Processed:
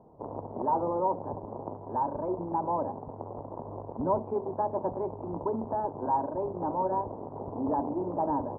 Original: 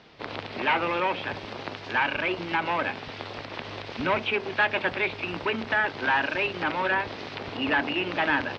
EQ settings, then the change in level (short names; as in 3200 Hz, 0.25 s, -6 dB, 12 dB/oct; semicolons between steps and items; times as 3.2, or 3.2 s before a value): Chebyshev low-pass 980 Hz, order 5; 0.0 dB